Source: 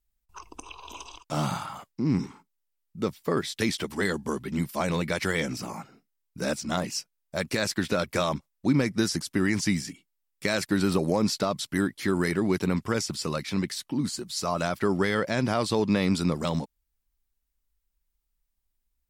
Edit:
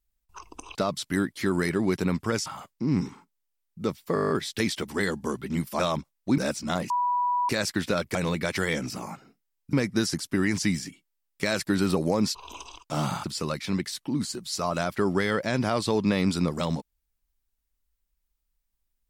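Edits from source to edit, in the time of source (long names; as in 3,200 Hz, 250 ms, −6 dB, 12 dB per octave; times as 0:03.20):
0:00.75–0:01.64: swap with 0:11.37–0:13.08
0:03.32: stutter 0.02 s, 9 plays
0:04.82–0:06.40: swap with 0:08.17–0:08.75
0:06.92–0:07.51: beep over 980 Hz −22 dBFS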